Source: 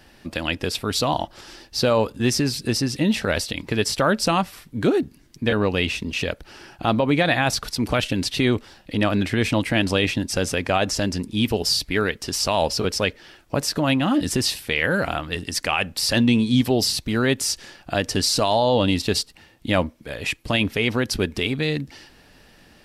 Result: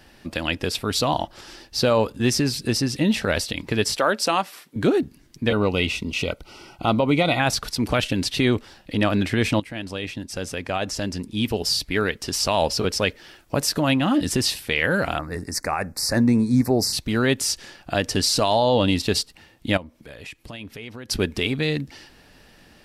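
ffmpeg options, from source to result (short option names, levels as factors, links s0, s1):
-filter_complex "[0:a]asettb=1/sr,asplit=3[s0][s1][s2];[s0]atrim=end=3.974[s3];[s1]atrim=start=3.97:end=4.76,asetpts=PTS-STARTPTS,afade=t=in:d=0.004:c=qsin,afade=t=out:st=0.786:d=0.004:c=qsin,highpass=340[s4];[s2]atrim=start=4.756[s5];[s3][s4]acrossfade=d=0.004:c1=hsin:c2=qsin[s6];[s6][s5]acrossfade=d=0.004:c1=qsin:c2=hsin,asettb=1/sr,asplit=3[s7][s8][s9];[s7]atrim=end=5.504[s10];[s8]atrim=start=5.5:end=7.4,asetpts=PTS-STARTPTS,afade=t=in:d=0.004:c=qsin,afade=t=out:st=1.896:d=0.004:c=qsin,asuperstop=centerf=1700:order=20:qfactor=4.9[s11];[s9]atrim=start=7.396[s12];[s10][s11]acrossfade=d=0.004:c1=hsin:c2=qsin[s13];[s13][s12]acrossfade=d=0.004:c1=qsin:c2=hsin,asettb=1/sr,asplit=3[s14][s15][s16];[s14]atrim=end=13.064[s17];[s15]atrim=start=13.06:end=13.88,asetpts=PTS-STARTPTS,afade=t=in:d=0.004:c=qsin,afade=t=out:st=0.816:d=0.004:c=qsin,highshelf=f=8600:g=6[s18];[s16]atrim=start=13.876[s19];[s17][s18]acrossfade=d=0.004:c1=hsin:c2=qsin[s20];[s20][s19]acrossfade=d=0.004:c1=qsin:c2=hsin,asettb=1/sr,asplit=3[s21][s22][s23];[s21]atrim=end=15.194[s24];[s22]atrim=start=15.19:end=16.93,asetpts=PTS-STARTPTS,afade=t=in:d=0.004:c=qsin,afade=t=out:st=1.736:d=0.004:c=qsin,asuperstop=centerf=3100:order=4:qfactor=1.1[s25];[s23]atrim=start=16.926[s26];[s24][s25]acrossfade=d=0.004:c1=hsin:c2=qsin[s27];[s27][s26]acrossfade=d=0.004:c1=qsin:c2=hsin,asettb=1/sr,asplit=3[s28][s29][s30];[s28]atrim=end=19.774[s31];[s29]atrim=start=19.77:end=21.1,asetpts=PTS-STARTPTS,afade=t=in:d=0.004:c=qsin,afade=t=out:st=1.326:d=0.004:c=qsin,acompressor=threshold=0.00891:ratio=2.5:attack=3.2:release=140:knee=1:detection=peak[s32];[s30]atrim=start=21.096[s33];[s31][s32]acrossfade=d=0.004:c1=hsin:c2=qsin[s34];[s34][s33]acrossfade=d=0.004:c1=qsin:c2=hsin,asplit=2[s35][s36];[s35]atrim=end=9.6,asetpts=PTS-STARTPTS,afade=t=out:st=9.596:d=0.004:c=hsin:silence=0.199526[s37];[s36]atrim=start=9.6,asetpts=PTS-STARTPTS,afade=t=in:d=2.67:silence=0.199526[s38];[s37][s38]concat=n=2:v=0:a=1"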